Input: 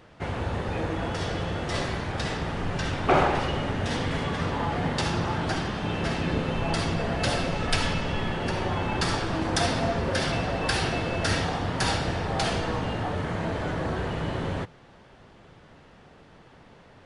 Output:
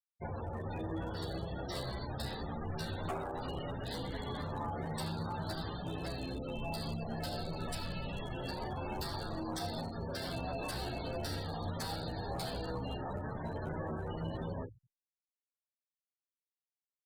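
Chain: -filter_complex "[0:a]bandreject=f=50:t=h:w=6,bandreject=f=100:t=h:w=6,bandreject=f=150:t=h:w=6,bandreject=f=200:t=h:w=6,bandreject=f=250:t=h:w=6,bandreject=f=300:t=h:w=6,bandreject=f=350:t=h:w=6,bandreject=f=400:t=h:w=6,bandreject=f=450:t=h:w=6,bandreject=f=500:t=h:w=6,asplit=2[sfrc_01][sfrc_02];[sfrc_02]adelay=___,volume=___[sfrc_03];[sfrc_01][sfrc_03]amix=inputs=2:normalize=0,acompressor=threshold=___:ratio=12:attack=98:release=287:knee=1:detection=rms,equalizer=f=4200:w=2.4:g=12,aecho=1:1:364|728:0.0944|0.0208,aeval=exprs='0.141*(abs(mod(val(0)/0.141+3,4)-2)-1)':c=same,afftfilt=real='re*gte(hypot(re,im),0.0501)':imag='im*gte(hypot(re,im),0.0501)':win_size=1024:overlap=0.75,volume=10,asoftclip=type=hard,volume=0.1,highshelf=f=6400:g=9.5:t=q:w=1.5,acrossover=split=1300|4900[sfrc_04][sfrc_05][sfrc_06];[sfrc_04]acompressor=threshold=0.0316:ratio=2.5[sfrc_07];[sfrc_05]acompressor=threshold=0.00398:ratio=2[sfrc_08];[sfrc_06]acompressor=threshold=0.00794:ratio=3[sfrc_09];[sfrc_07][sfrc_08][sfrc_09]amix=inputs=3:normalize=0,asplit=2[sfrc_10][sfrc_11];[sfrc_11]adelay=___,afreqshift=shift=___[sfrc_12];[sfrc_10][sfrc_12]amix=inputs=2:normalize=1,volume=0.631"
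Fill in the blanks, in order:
31, 0.501, 0.0501, 11.3, 0.45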